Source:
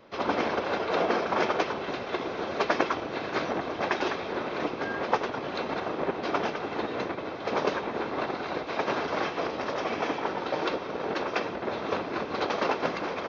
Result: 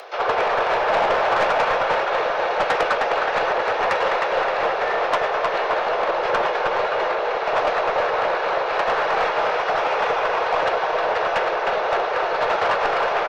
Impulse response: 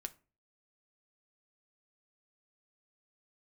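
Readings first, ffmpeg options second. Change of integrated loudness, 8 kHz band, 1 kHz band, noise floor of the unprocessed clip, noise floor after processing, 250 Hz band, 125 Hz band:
+9.0 dB, no reading, +11.0 dB, -37 dBFS, -24 dBFS, -5.0 dB, -1.5 dB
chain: -filter_complex "[0:a]acrossover=split=2800[s0][s1];[s1]acompressor=threshold=0.002:ratio=4:attack=1:release=60[s2];[s0][s2]amix=inputs=2:normalize=0,highpass=f=210:w=0.5412,highpass=f=210:w=1.3066,acompressor=mode=upward:threshold=0.00708:ratio=2.5,aecho=1:1:310|573.5|797.5|987.9|1150:0.631|0.398|0.251|0.158|0.1,afreqshift=170,asoftclip=type=tanh:threshold=0.0668,aeval=exprs='0.0668*(cos(1*acos(clip(val(0)/0.0668,-1,1)))-cos(1*PI/2))+0.00106*(cos(2*acos(clip(val(0)/0.0668,-1,1)))-cos(2*PI/2))':c=same,asplit=2[s3][s4];[1:a]atrim=start_sample=2205[s5];[s4][s5]afir=irnorm=-1:irlink=0,volume=2.99[s6];[s3][s6]amix=inputs=2:normalize=0"

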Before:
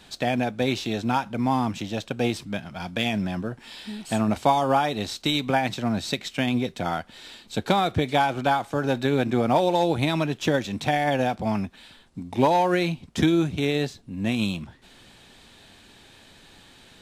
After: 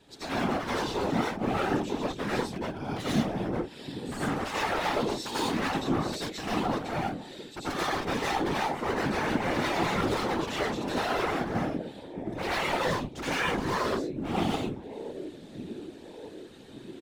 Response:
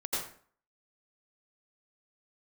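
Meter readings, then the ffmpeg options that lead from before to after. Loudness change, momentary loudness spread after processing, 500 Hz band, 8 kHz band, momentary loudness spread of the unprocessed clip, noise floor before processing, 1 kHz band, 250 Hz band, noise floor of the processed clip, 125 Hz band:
-5.5 dB, 12 LU, -5.5 dB, -1.5 dB, 11 LU, -52 dBFS, -5.0 dB, -5.5 dB, -47 dBFS, -7.0 dB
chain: -filter_complex "[0:a]equalizer=f=330:t=o:w=1.4:g=11.5,asplit=2[s0][s1];[s1]adelay=1180,lowpass=f=2200:p=1,volume=0.0891,asplit=2[s2][s3];[s3]adelay=1180,lowpass=f=2200:p=1,volume=0.51,asplit=2[s4][s5];[s5]adelay=1180,lowpass=f=2200:p=1,volume=0.51,asplit=2[s6][s7];[s7]adelay=1180,lowpass=f=2200:p=1,volume=0.51[s8];[s0][s2][s4][s6][s8]amix=inputs=5:normalize=0,aeval=exprs='0.112*(abs(mod(val(0)/0.112+3,4)-2)-1)':c=same[s9];[1:a]atrim=start_sample=2205,atrim=end_sample=6615[s10];[s9][s10]afir=irnorm=-1:irlink=0,afftfilt=real='hypot(re,im)*cos(2*PI*random(0))':imag='hypot(re,im)*sin(2*PI*random(1))':win_size=512:overlap=0.75,volume=0.668"

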